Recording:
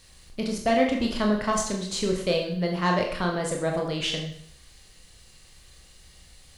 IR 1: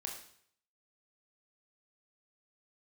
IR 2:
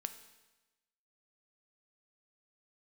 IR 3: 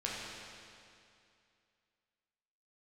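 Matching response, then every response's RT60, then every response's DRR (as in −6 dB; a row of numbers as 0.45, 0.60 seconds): 1; 0.60, 1.1, 2.5 seconds; 0.5, 9.0, −5.5 decibels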